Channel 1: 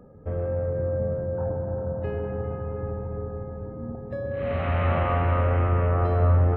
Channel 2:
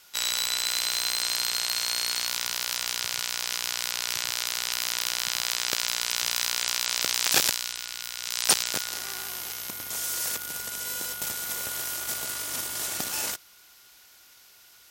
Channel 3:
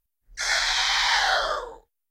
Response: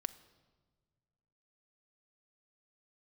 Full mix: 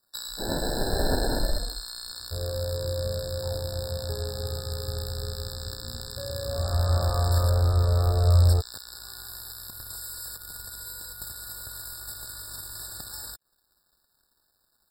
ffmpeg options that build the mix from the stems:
-filter_complex "[0:a]adynamicequalizer=threshold=0.0126:dfrequency=490:dqfactor=0.78:tfrequency=490:tqfactor=0.78:attack=5:release=100:ratio=0.375:range=3:mode=boostabove:tftype=bell,adelay=2050,volume=0.376[s0];[1:a]acompressor=threshold=0.02:ratio=3,equalizer=f=680:w=0.43:g=-7.5,volume=1.19,asplit=2[s1][s2];[s2]volume=0.15[s3];[2:a]asubboost=boost=7:cutoff=110,acrusher=samples=37:mix=1:aa=0.000001,volume=0.596[s4];[3:a]atrim=start_sample=2205[s5];[s3][s5]afir=irnorm=-1:irlink=0[s6];[s0][s1][s4][s6]amix=inputs=4:normalize=0,asubboost=boost=9.5:cutoff=68,aeval=exprs='sgn(val(0))*max(abs(val(0))-0.00398,0)':c=same,afftfilt=real='re*eq(mod(floor(b*sr/1024/1800),2),0)':imag='im*eq(mod(floor(b*sr/1024/1800),2),0)':win_size=1024:overlap=0.75"

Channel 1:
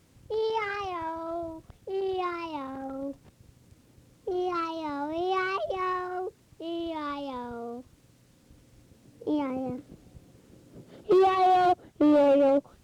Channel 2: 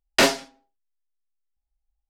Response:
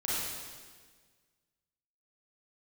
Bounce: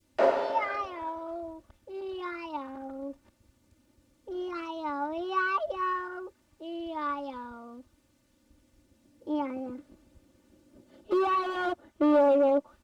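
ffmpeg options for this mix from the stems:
-filter_complex "[0:a]aecho=1:1:3.4:0.96,volume=0.335[s0];[1:a]bandpass=f=570:t=q:w=3.1:csg=0,volume=0.562,asplit=2[s1][s2];[s2]volume=0.562[s3];[2:a]atrim=start_sample=2205[s4];[s3][s4]afir=irnorm=-1:irlink=0[s5];[s0][s1][s5]amix=inputs=3:normalize=0,adynamicequalizer=threshold=0.00398:dfrequency=1200:dqfactor=0.74:tfrequency=1200:tqfactor=0.74:attack=5:release=100:ratio=0.375:range=4:mode=boostabove:tftype=bell"

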